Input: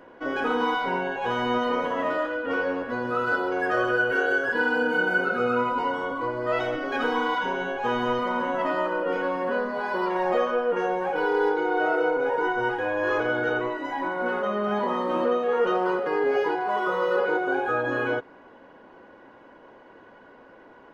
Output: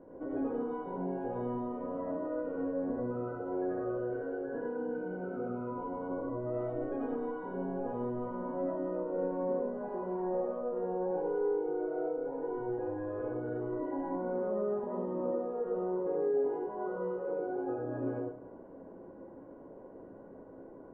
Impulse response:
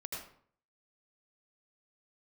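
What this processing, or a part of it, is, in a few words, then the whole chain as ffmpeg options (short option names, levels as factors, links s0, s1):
television next door: -filter_complex "[0:a]acompressor=threshold=0.0251:ratio=6,lowpass=480[s0];[1:a]atrim=start_sample=2205[s1];[s0][s1]afir=irnorm=-1:irlink=0,volume=1.58"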